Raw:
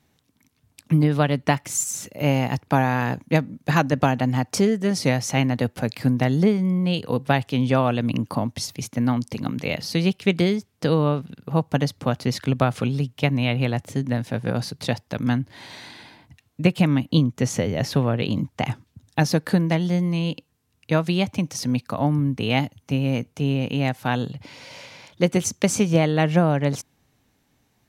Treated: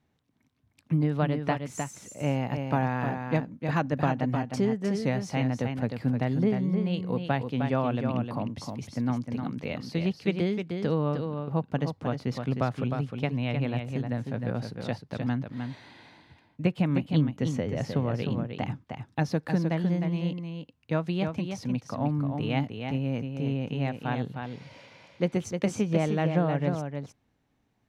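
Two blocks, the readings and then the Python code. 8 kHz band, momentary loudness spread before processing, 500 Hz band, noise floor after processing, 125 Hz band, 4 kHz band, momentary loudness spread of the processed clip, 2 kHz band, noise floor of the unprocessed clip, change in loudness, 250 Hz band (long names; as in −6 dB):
below −15 dB, 8 LU, −6.5 dB, −72 dBFS, −6.0 dB, −11.5 dB, 9 LU, −9.0 dB, −67 dBFS, −6.5 dB, −6.0 dB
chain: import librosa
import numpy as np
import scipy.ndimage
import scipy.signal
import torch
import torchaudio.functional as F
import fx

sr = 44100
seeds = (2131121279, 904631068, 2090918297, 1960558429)

p1 = fx.lowpass(x, sr, hz=2100.0, slope=6)
p2 = p1 + fx.echo_single(p1, sr, ms=308, db=-6.0, dry=0)
y = p2 * librosa.db_to_amplitude(-7.0)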